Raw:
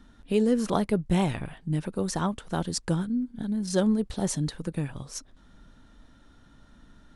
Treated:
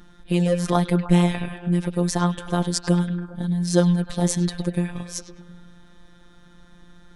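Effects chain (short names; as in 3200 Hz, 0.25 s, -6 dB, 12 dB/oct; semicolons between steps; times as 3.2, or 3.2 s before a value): robotiser 175 Hz; delay with a stepping band-pass 0.102 s, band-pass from 3100 Hz, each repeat -0.7 oct, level -6.5 dB; gain +7.5 dB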